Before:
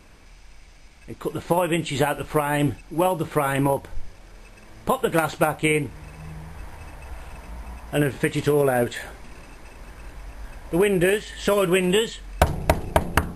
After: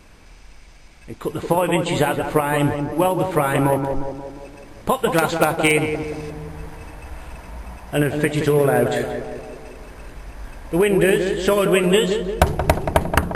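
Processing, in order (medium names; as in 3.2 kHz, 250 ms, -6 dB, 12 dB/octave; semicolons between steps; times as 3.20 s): 4.90–6.29 s: peaking EQ 4.8 kHz +2.5 dB -> +8.5 dB 2 oct; in parallel at -10 dB: integer overflow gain 7.5 dB; on the sum: tape echo 176 ms, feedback 67%, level -4 dB, low-pass 1.2 kHz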